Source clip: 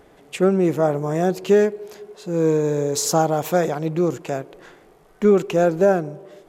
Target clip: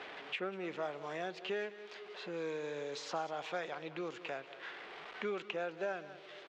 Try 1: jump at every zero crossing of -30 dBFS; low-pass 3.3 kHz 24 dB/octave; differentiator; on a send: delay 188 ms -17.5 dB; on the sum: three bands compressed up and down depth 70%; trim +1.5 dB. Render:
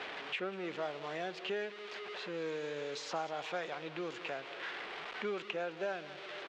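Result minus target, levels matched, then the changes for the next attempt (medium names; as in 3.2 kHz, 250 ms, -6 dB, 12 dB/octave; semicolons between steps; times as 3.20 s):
jump at every zero crossing: distortion +11 dB
change: jump at every zero crossing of -42 dBFS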